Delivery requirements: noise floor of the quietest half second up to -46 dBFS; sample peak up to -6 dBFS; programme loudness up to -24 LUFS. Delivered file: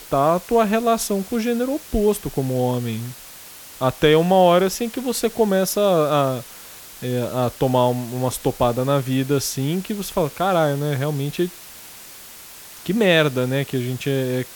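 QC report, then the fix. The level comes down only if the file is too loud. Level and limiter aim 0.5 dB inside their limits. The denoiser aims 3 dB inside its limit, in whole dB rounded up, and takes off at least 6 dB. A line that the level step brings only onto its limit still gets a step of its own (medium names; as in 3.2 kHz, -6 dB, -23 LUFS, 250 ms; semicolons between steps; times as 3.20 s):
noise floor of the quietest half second -41 dBFS: fail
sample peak -1.5 dBFS: fail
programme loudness -20.5 LUFS: fail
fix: noise reduction 6 dB, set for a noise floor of -41 dBFS; trim -4 dB; peak limiter -6.5 dBFS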